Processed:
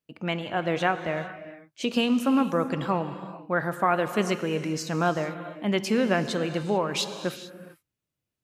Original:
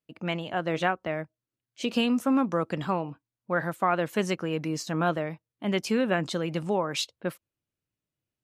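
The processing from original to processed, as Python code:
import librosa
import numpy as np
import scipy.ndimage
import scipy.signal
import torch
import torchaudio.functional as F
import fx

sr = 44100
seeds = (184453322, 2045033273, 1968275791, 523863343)

y = fx.rev_gated(x, sr, seeds[0], gate_ms=470, shape='flat', drr_db=9.5)
y = F.gain(torch.from_numpy(y), 1.5).numpy()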